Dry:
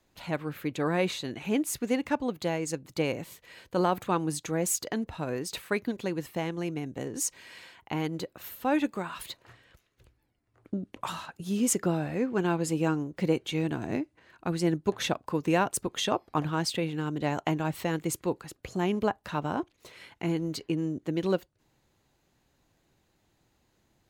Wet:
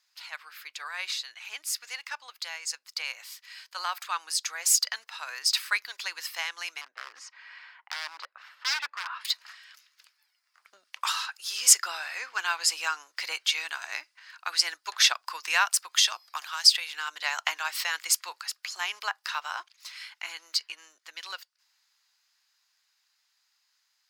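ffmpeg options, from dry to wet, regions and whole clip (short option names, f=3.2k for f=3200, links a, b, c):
-filter_complex "[0:a]asettb=1/sr,asplit=3[a][b][c];[a]atrim=end=6.814[d];[b]atrim=start=6.81:end=9.25,asetpts=PTS-STARTPTS,afade=t=in:d=0.004:c=qsin,afade=t=out:st=2.436:d=0.004:c=qsin,lowpass=1.4k,aeval=exprs='0.0266*(abs(mod(val(0)/0.0266+3,4)-2)-1)':c=same[e];[c]atrim=start=9.246[f];[d][e]acrossfade=d=0.004:c1=hsin:c2=qsin[g];[g][f]acrossfade=d=0.004:c1=qsin:c2=hsin,asettb=1/sr,asplit=3[h][i][j];[h]atrim=end=15.654[k];[i]atrim=start=15.65:end=16.94,asetpts=PTS-STARTPTS,afade=t=in:d=0.004:c=qsin,afade=t=out:st=1.286:d=0.004:c=qsin,highshelf=f=8.1k:g=5,acrossover=split=270|3800[l][m][n];[l]acompressor=threshold=-41dB:ratio=4[o];[m]acompressor=threshold=-35dB:ratio=4[p];[n]acompressor=threshold=-35dB:ratio=4[q];[o][p][q]amix=inputs=3:normalize=0[r];[j]atrim=start=16.936[s];[k][r]acrossfade=d=0.004:c1=hsin:c2=qsin[t];[t][s]acrossfade=d=0.004:c1=qsin:c2=hsin,equalizer=f=5k:w=3.2:g=12.5,dynaudnorm=f=590:g=17:m=11.5dB,highpass=f=1.2k:w=0.5412,highpass=f=1.2k:w=1.3066"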